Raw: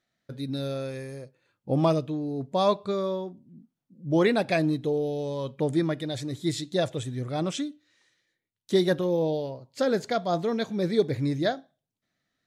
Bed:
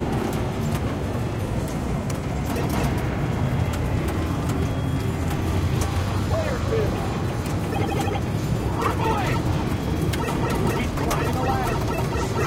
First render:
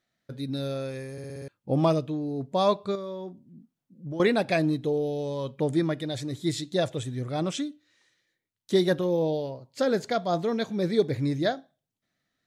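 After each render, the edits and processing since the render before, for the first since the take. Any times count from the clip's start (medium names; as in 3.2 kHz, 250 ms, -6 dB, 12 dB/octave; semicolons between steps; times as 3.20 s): 1.12 s: stutter in place 0.06 s, 6 plays; 2.95–4.20 s: compression 5:1, threshold -32 dBFS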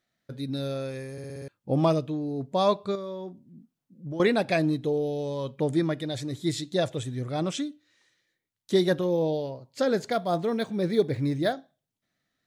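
10.12–11.53 s: decimation joined by straight lines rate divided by 3×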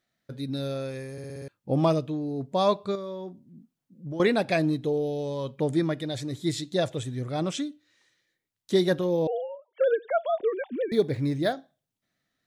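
9.27–10.92 s: formants replaced by sine waves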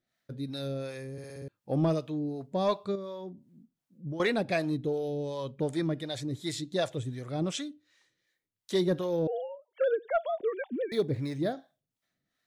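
harmonic tremolo 2.7 Hz, depth 70%, crossover 510 Hz; saturation -15 dBFS, distortion -26 dB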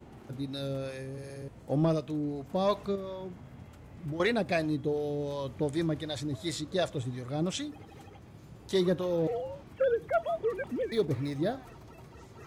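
add bed -26.5 dB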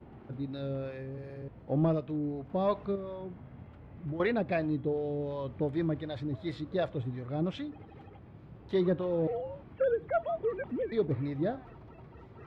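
distance through air 390 m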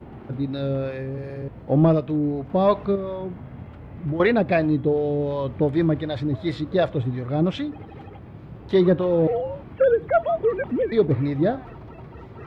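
trim +10.5 dB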